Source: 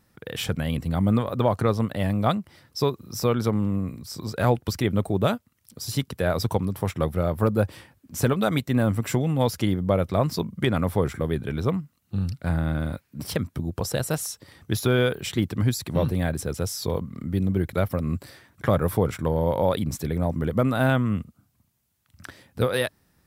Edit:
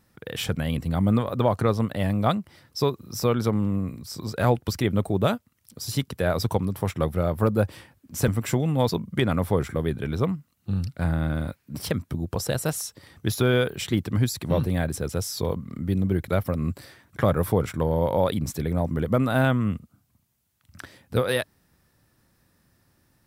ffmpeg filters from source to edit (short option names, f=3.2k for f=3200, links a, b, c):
-filter_complex "[0:a]asplit=3[a][b][c];[a]atrim=end=8.282[d];[b]atrim=start=8.888:end=9.502[e];[c]atrim=start=10.338[f];[d][e]acrossfade=d=0.004:c1=hsin:c2=hsin[g];[g][f]acrossfade=d=0.004:c1=hsin:c2=hsin"